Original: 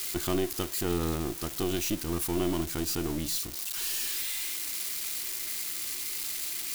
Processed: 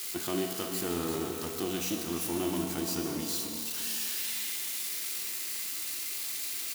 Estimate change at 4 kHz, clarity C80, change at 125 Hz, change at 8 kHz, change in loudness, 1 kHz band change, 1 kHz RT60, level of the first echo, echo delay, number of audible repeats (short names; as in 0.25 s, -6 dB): -1.0 dB, 3.0 dB, -6.0 dB, -1.0 dB, -1.5 dB, -1.0 dB, 2.7 s, -9.5 dB, 0.348 s, 1